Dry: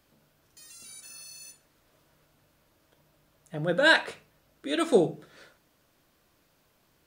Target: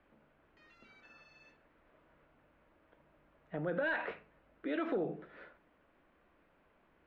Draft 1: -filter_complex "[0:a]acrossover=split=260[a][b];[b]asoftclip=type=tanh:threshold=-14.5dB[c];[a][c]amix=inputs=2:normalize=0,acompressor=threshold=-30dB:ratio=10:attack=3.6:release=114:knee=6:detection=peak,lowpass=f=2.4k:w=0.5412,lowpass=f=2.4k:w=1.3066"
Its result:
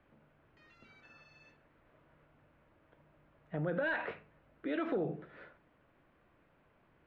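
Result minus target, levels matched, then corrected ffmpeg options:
125 Hz band +4.5 dB
-filter_complex "[0:a]acrossover=split=260[a][b];[b]asoftclip=type=tanh:threshold=-14.5dB[c];[a][c]amix=inputs=2:normalize=0,acompressor=threshold=-30dB:ratio=10:attack=3.6:release=114:knee=6:detection=peak,lowpass=f=2.4k:w=0.5412,lowpass=f=2.4k:w=1.3066,equalizer=f=120:t=o:w=0.5:g=-15"

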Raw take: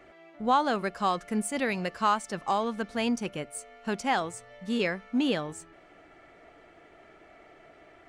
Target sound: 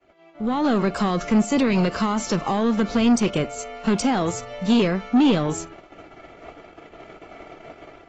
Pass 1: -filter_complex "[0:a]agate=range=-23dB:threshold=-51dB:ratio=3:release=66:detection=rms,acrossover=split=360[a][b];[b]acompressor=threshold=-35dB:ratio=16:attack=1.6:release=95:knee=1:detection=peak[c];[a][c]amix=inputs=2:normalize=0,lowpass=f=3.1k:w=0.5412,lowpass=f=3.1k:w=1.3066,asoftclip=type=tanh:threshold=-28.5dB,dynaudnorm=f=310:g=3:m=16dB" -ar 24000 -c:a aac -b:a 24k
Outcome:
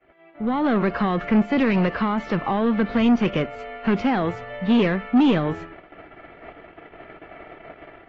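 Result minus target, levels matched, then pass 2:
4000 Hz band -4.0 dB; 2000 Hz band +2.5 dB
-filter_complex "[0:a]agate=range=-23dB:threshold=-51dB:ratio=3:release=66:detection=rms,acrossover=split=360[a][b];[b]acompressor=threshold=-35dB:ratio=16:attack=1.6:release=95:knee=1:detection=peak,equalizer=f=1.8k:w=5:g=-9[c];[a][c]amix=inputs=2:normalize=0,asoftclip=type=tanh:threshold=-28.5dB,dynaudnorm=f=310:g=3:m=16dB" -ar 24000 -c:a aac -b:a 24k

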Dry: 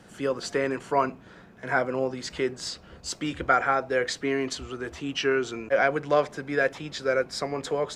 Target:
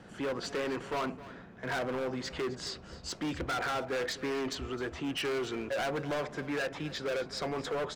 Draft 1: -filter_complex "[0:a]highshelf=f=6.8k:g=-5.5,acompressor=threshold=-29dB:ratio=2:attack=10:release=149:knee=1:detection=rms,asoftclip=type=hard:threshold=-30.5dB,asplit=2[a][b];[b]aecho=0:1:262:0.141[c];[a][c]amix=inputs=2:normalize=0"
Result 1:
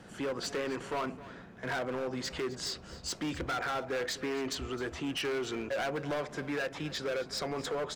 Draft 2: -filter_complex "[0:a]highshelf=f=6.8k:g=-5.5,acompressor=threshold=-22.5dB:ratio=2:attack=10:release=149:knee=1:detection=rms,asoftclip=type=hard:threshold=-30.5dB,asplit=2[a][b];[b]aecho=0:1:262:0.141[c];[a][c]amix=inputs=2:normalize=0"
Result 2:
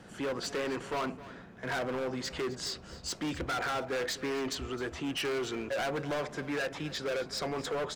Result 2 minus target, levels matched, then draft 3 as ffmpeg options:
8000 Hz band +3.0 dB
-filter_complex "[0:a]highshelf=f=6.8k:g=-15,acompressor=threshold=-22.5dB:ratio=2:attack=10:release=149:knee=1:detection=rms,asoftclip=type=hard:threshold=-30.5dB,asplit=2[a][b];[b]aecho=0:1:262:0.141[c];[a][c]amix=inputs=2:normalize=0"

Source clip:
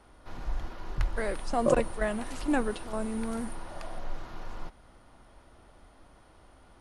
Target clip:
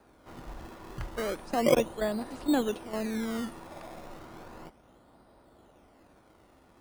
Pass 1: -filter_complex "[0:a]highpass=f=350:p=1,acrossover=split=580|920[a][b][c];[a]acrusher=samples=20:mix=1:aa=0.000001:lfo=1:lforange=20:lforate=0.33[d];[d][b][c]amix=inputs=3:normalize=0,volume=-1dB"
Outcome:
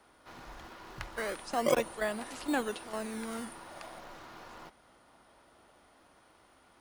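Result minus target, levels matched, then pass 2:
1000 Hz band +3.5 dB
-filter_complex "[0:a]highpass=f=350:p=1,tiltshelf=f=960:g=8.5,acrossover=split=580|920[a][b][c];[a]acrusher=samples=20:mix=1:aa=0.000001:lfo=1:lforange=20:lforate=0.33[d];[d][b][c]amix=inputs=3:normalize=0,volume=-1dB"

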